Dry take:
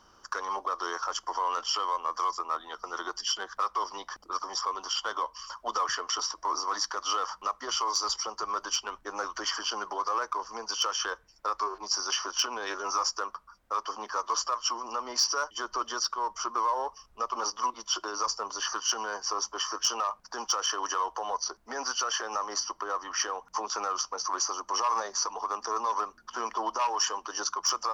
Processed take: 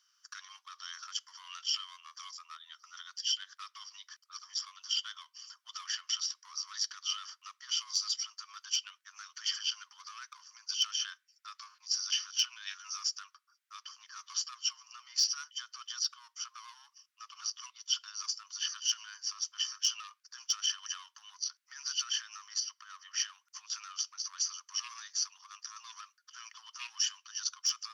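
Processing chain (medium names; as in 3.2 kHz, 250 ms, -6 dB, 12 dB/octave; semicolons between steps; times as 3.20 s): dynamic bell 3.2 kHz, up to +8 dB, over -45 dBFS, Q 1; Bessel high-pass 2.5 kHz, order 8; trim -5.5 dB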